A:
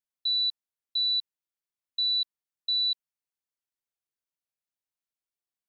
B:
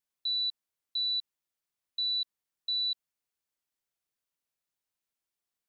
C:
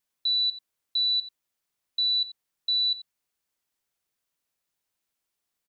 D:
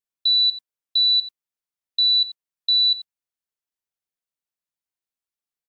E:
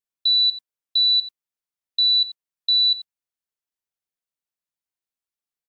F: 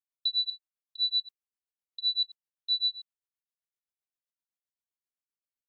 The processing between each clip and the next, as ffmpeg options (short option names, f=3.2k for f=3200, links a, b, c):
-af "alimiter=level_in=6.5dB:limit=-24dB:level=0:latency=1,volume=-6.5dB,volume=3.5dB"
-filter_complex "[0:a]asplit=2[a][b];[b]adelay=87.46,volume=-15dB,highshelf=f=4k:g=-1.97[c];[a][c]amix=inputs=2:normalize=0,volume=6dB"
-af "agate=range=-18dB:threshold=-36dB:ratio=16:detection=peak,volume=7dB"
-af anull
-af "tremolo=f=7.7:d=0.99,volume=-7dB"